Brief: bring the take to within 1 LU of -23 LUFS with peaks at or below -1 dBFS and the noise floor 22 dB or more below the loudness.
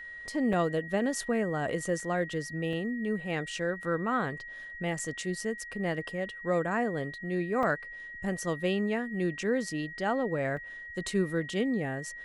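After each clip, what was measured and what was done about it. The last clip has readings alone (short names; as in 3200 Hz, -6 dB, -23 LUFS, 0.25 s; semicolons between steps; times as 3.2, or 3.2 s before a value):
dropouts 6; longest dropout 3.2 ms; steady tone 1900 Hz; tone level -41 dBFS; loudness -31.5 LUFS; peak -16.5 dBFS; loudness target -23.0 LUFS
-> interpolate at 0.53/2/2.73/4.99/7.63/10.57, 3.2 ms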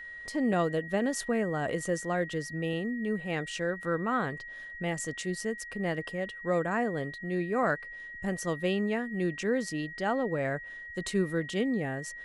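dropouts 0; steady tone 1900 Hz; tone level -41 dBFS
-> notch 1900 Hz, Q 30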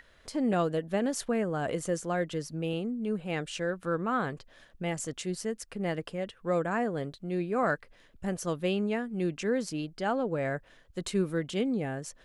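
steady tone none; loudness -32.0 LUFS; peak -16.5 dBFS; loudness target -23.0 LUFS
-> gain +9 dB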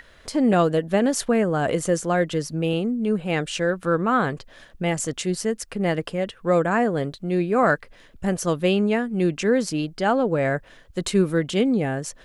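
loudness -23.0 LUFS; peak -7.5 dBFS; noise floor -52 dBFS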